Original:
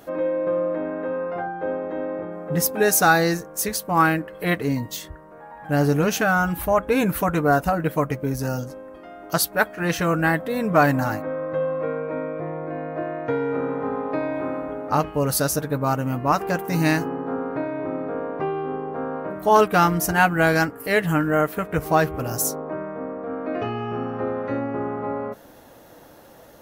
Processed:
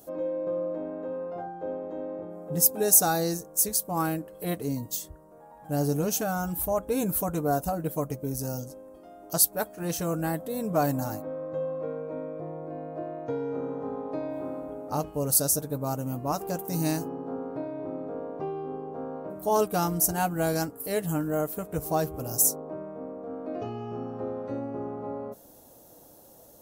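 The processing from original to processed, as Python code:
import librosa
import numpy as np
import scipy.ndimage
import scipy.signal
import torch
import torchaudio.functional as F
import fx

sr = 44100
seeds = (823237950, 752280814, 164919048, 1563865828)

y = fx.curve_eq(x, sr, hz=(710.0, 1900.0, 7900.0), db=(0, -13, 10))
y = y * 10.0 ** (-7.0 / 20.0)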